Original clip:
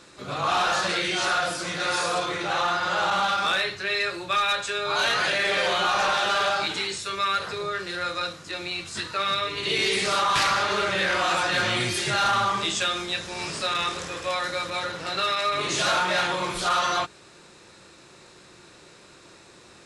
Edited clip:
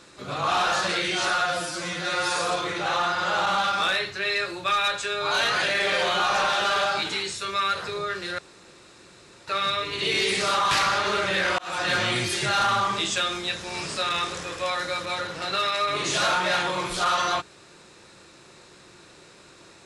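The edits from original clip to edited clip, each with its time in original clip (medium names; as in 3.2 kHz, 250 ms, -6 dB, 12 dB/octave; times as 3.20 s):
1.30–2.01 s: stretch 1.5×
8.03–9.12 s: room tone
11.23–11.52 s: fade in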